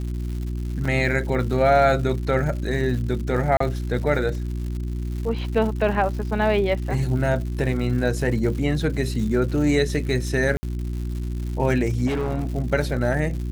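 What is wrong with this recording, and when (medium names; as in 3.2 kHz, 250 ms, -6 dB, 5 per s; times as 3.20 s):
crackle 210 per s -32 dBFS
hum 60 Hz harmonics 6 -27 dBFS
0.85 s: dropout 4.6 ms
3.57–3.60 s: dropout 34 ms
10.57–10.63 s: dropout 60 ms
12.06–12.47 s: clipped -20.5 dBFS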